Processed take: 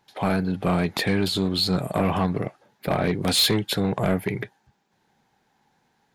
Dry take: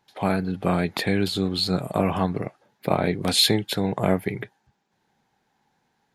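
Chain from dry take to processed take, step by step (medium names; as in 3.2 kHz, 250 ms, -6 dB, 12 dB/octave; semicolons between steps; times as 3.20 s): saturation -17.5 dBFS, distortion -11 dB; trim +3 dB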